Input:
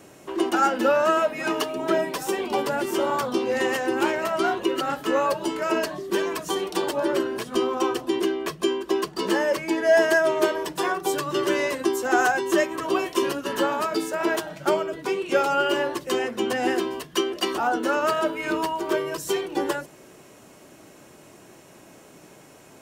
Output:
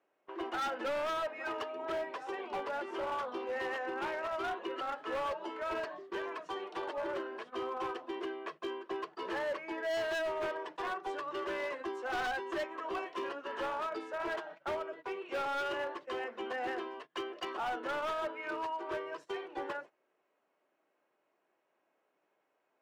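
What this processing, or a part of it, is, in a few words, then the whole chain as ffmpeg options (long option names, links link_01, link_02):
walkie-talkie: -af "highpass=520,lowpass=2200,asoftclip=type=hard:threshold=-23.5dB,agate=range=-16dB:threshold=-40dB:ratio=16:detection=peak,volume=-8.5dB"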